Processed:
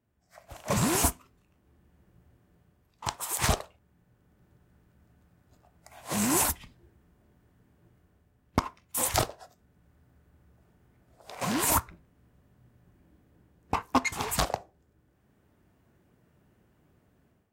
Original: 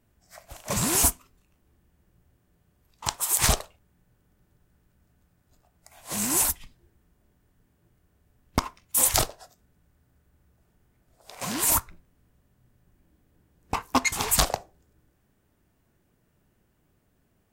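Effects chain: high-pass 59 Hz; treble shelf 3.4 kHz -9 dB; level rider gain up to 12 dB; trim -7.5 dB

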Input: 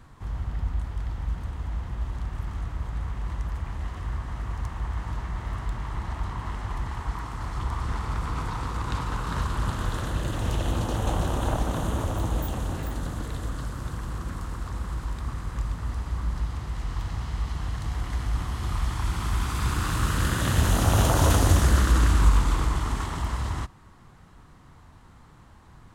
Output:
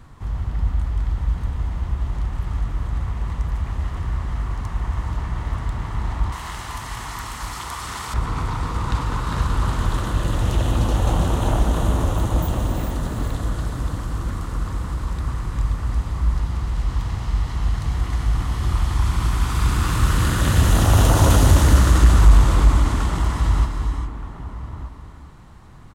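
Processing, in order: bass shelf 180 Hz +3 dB; band-stop 1.6 kHz, Q 27; gated-style reverb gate 440 ms rising, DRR 5.5 dB; saturation -5.5 dBFS, distortion -24 dB; 6.32–8.14 s: tilt EQ +4 dB/octave; echo from a far wall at 210 m, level -10 dB; trim +3.5 dB

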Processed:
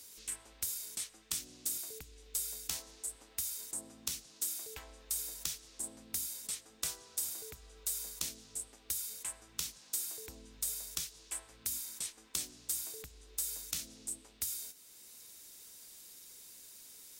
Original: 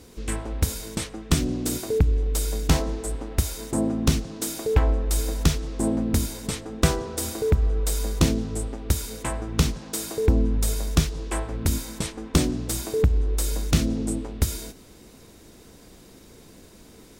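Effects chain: pre-emphasis filter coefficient 0.97; three bands compressed up and down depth 40%; trim -5.5 dB

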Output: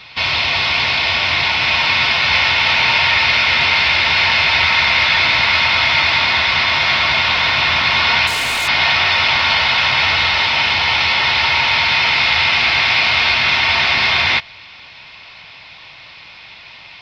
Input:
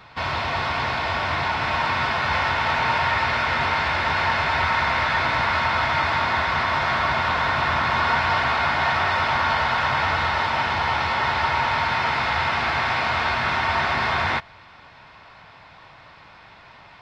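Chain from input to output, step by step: high-order bell 3.5 kHz +14.5 dB; 8.27–8.68 s: hard clipper -17 dBFS, distortion -21 dB; trim +1 dB

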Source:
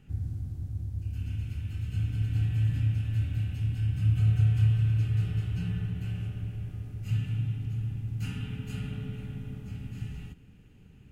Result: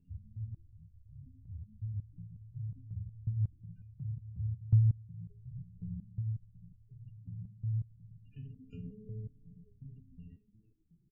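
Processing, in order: multi-tap echo 56/110 ms -9/-13.5 dB; spectral gate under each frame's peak -20 dB strong; resonator arpeggio 5.5 Hz 87–410 Hz

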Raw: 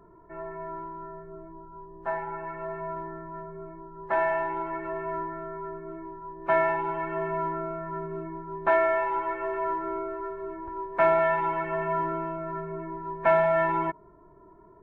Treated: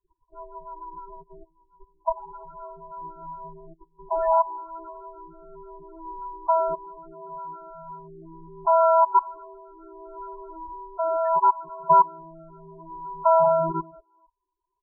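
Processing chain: gate -41 dBFS, range -20 dB; bass shelf 100 Hz +11.5 dB; in parallel at -1 dB: gain riding within 3 dB 2 s; on the sum: speakerphone echo 350 ms, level -23 dB; level held to a coarse grid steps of 21 dB; rotary cabinet horn 6.7 Hz, later 0.7 Hz, at 2.08 s; resonant low-pass 1.1 kHz, resonance Q 4.2; loudest bins only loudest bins 8

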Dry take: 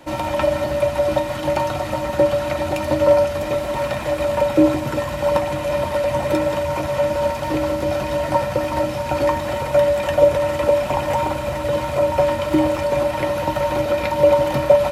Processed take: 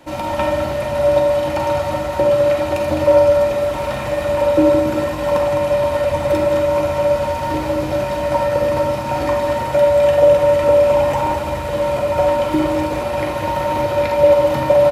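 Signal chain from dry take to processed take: delay 209 ms -7.5 dB; on a send at -2 dB: reverberation RT60 0.55 s, pre-delay 38 ms; on the sum: trim -1.5 dB

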